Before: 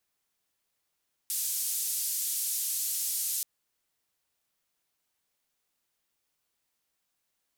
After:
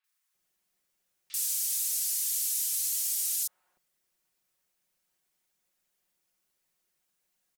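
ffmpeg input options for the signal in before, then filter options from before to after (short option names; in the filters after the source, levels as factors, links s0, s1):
-f lavfi -i "anoisesrc=c=white:d=2.13:r=44100:seed=1,highpass=f=6300,lowpass=f=14000,volume=-21.9dB"
-filter_complex "[0:a]aecho=1:1:5.5:0.65,acrossover=split=970|3600[s0][s1][s2];[s2]adelay=40[s3];[s0]adelay=340[s4];[s4][s1][s3]amix=inputs=3:normalize=0"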